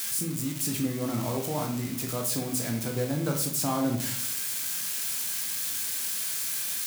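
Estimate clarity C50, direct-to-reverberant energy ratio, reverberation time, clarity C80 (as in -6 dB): 6.5 dB, 1.5 dB, 0.60 s, 10.5 dB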